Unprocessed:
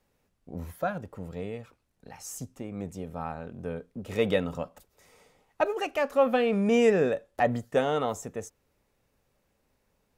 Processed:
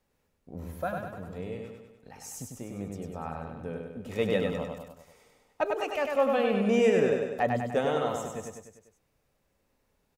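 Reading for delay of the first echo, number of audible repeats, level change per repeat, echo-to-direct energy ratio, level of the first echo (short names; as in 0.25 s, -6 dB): 99 ms, 5, -5.0 dB, -2.5 dB, -4.0 dB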